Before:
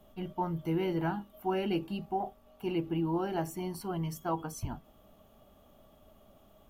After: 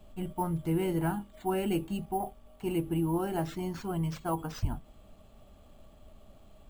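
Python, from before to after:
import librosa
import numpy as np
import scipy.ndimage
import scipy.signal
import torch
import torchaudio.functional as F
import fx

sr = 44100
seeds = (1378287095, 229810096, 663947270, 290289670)

y = fx.low_shelf(x, sr, hz=100.0, db=12.0)
y = np.repeat(y[::4], 4)[:len(y)]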